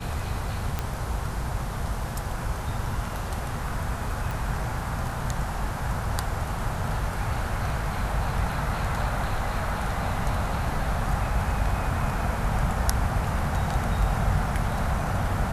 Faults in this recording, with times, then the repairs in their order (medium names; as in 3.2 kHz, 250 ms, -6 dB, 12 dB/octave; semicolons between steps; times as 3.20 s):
0.79 s: pop -13 dBFS
4.31 s: pop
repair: de-click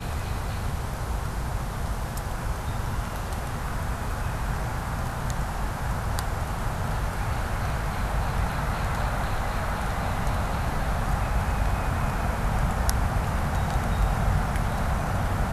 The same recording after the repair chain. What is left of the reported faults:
nothing left